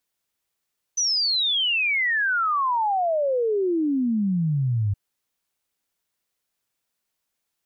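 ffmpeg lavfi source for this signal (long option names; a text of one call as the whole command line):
ffmpeg -f lavfi -i "aevalsrc='0.106*clip(min(t,3.97-t)/0.01,0,1)*sin(2*PI*6100*3.97/log(97/6100)*(exp(log(97/6100)*t/3.97)-1))':duration=3.97:sample_rate=44100" out.wav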